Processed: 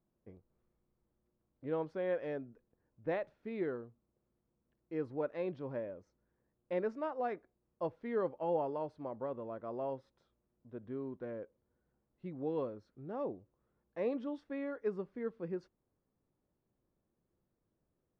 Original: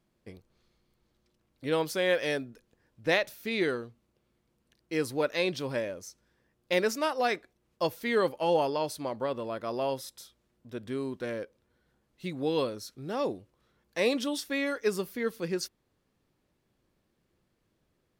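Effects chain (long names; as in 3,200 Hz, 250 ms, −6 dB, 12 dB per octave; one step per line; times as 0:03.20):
low-pass filter 1,100 Hz 12 dB per octave
level −7.5 dB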